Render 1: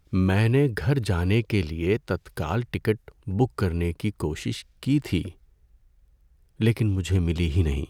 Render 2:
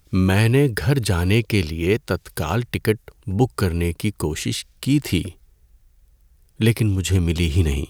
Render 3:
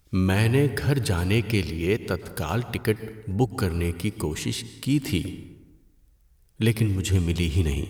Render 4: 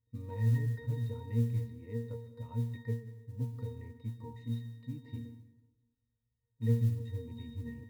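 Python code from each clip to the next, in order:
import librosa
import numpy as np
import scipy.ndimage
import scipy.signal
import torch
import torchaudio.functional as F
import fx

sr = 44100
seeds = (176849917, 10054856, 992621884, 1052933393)

y1 = fx.high_shelf(x, sr, hz=4300.0, db=10.5)
y1 = y1 * librosa.db_to_amplitude(4.0)
y2 = fx.rev_plate(y1, sr, seeds[0], rt60_s=1.2, hf_ratio=0.5, predelay_ms=105, drr_db=13.0)
y2 = y2 * librosa.db_to_amplitude(-4.5)
y3 = fx.octave_resonator(y2, sr, note='A#', decay_s=0.44)
y3 = fx.mod_noise(y3, sr, seeds[1], snr_db=32)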